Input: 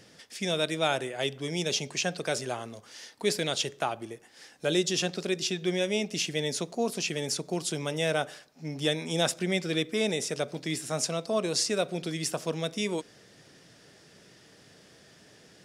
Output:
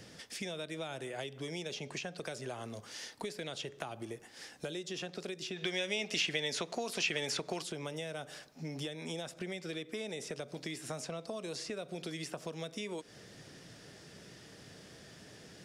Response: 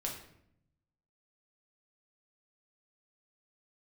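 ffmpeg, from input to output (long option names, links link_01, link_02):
-filter_complex "[0:a]acrossover=split=340|3200[link_01][link_02][link_03];[link_01]acompressor=threshold=-43dB:ratio=4[link_04];[link_02]acompressor=threshold=-33dB:ratio=4[link_05];[link_03]acompressor=threshold=-43dB:ratio=4[link_06];[link_04][link_05][link_06]amix=inputs=3:normalize=0,lowshelf=frequency=170:gain=5.5,acompressor=threshold=-39dB:ratio=5,asplit=3[link_07][link_08][link_09];[link_07]afade=type=out:start_time=5.56:duration=0.02[link_10];[link_08]equalizer=frequency=2500:width=0.3:gain=10.5,afade=type=in:start_time=5.56:duration=0.02,afade=type=out:start_time=7.62:duration=0.02[link_11];[link_09]afade=type=in:start_time=7.62:duration=0.02[link_12];[link_10][link_11][link_12]amix=inputs=3:normalize=0,volume=1dB"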